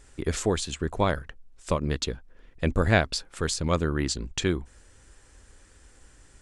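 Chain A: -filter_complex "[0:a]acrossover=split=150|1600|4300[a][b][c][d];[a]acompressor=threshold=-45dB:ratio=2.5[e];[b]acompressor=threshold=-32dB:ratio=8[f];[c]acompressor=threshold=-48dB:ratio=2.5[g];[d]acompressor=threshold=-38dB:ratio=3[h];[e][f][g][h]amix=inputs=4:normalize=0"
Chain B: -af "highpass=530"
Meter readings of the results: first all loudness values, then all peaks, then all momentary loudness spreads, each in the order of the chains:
-36.5, -31.0 LUFS; -15.5, -5.0 dBFS; 21, 11 LU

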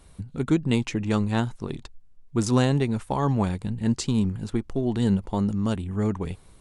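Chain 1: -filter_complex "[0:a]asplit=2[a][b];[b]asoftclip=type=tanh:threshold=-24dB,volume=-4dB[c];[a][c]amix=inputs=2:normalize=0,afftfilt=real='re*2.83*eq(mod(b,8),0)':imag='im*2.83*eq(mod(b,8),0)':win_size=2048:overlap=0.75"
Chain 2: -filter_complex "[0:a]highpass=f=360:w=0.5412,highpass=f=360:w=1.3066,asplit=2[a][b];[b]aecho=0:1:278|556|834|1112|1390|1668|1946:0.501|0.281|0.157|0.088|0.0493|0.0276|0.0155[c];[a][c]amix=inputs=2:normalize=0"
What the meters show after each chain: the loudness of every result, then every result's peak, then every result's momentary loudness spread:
-29.0, -31.5 LUFS; -9.0, -11.0 dBFS; 10, 10 LU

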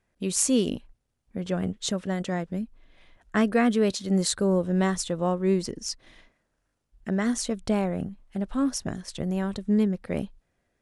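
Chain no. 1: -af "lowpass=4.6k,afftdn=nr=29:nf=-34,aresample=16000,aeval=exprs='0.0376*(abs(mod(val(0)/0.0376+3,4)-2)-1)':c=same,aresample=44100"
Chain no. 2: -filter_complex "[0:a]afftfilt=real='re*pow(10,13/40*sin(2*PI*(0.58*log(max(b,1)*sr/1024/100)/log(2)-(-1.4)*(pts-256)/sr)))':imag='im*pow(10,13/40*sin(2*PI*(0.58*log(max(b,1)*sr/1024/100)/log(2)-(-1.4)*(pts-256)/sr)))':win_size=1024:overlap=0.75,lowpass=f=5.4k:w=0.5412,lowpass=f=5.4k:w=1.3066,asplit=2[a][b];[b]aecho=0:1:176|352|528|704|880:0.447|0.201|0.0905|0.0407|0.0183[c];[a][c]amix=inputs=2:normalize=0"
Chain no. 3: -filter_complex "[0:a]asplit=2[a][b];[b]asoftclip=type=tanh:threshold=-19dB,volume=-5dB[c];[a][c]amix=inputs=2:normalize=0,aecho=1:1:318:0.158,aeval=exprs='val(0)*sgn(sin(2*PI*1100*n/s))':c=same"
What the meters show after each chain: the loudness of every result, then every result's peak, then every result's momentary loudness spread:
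-36.0, -24.5, -22.0 LUFS; -26.0, -7.5, -6.0 dBFS; 6, 15, 12 LU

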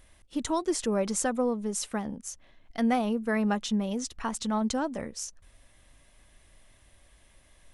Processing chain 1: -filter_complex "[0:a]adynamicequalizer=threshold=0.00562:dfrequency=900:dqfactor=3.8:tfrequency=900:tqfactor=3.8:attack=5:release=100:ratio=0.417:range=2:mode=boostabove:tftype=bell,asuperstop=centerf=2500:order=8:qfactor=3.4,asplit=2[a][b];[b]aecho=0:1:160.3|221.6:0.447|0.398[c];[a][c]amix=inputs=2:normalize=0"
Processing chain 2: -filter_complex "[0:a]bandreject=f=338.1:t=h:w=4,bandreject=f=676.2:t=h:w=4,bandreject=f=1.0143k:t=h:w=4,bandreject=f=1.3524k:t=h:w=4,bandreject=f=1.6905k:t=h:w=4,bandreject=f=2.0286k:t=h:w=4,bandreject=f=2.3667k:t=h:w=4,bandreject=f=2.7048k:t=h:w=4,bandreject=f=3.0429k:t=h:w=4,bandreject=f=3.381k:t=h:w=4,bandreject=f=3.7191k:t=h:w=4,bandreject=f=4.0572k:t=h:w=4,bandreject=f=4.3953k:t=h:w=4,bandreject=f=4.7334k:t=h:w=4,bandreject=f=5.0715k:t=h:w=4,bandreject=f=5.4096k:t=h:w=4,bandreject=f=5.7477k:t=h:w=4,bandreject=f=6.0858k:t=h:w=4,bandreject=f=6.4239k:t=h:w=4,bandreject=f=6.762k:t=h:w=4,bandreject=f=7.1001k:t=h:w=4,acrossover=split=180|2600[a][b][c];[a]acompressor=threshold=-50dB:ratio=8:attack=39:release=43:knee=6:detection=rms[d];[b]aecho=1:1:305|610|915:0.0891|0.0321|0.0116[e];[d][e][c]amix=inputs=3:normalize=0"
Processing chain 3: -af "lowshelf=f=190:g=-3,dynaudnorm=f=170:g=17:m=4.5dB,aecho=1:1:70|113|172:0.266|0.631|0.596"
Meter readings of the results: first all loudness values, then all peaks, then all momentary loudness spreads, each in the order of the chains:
-28.5, -31.0, -24.5 LUFS; -13.5, -14.0, -8.0 dBFS; 12, 10, 14 LU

